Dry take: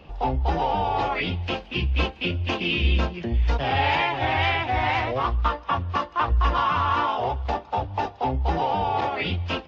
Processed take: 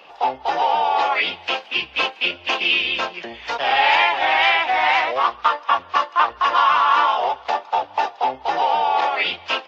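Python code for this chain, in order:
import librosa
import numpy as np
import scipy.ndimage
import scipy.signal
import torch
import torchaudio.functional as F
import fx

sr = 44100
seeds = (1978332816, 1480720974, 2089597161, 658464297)

y = scipy.signal.sosfilt(scipy.signal.butter(2, 700.0, 'highpass', fs=sr, output='sos'), x)
y = F.gain(torch.from_numpy(y), 8.0).numpy()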